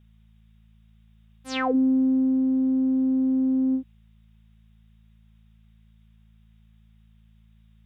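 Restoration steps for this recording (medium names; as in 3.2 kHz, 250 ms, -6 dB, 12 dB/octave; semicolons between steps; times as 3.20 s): de-hum 54.7 Hz, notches 4; expander -48 dBFS, range -21 dB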